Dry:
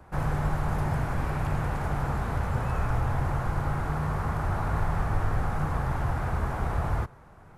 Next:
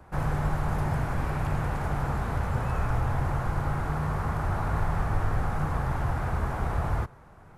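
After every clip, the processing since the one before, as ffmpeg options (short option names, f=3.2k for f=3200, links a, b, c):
-af anull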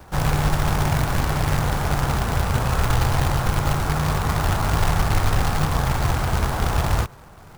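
-af "acrusher=bits=2:mode=log:mix=0:aa=0.000001,volume=6.5dB"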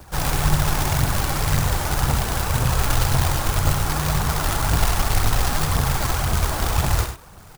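-filter_complex "[0:a]highshelf=f=3.8k:g=9.5,aphaser=in_gain=1:out_gain=1:delay=3.8:decay=0.42:speed=1.9:type=triangular,asplit=2[a][b];[b]aecho=0:1:67.06|99.13:0.316|0.316[c];[a][c]amix=inputs=2:normalize=0,volume=-3dB"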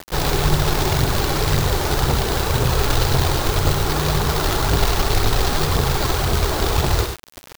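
-filter_complex "[0:a]equalizer=f=400:t=o:w=0.67:g=11,equalizer=f=4k:t=o:w=0.67:g=6,equalizer=f=10k:t=o:w=0.67:g=-7,asplit=2[a][b];[b]acompressor=threshold=-27dB:ratio=6,volume=-1dB[c];[a][c]amix=inputs=2:normalize=0,acrusher=bits=4:mix=0:aa=0.000001,volume=-1dB"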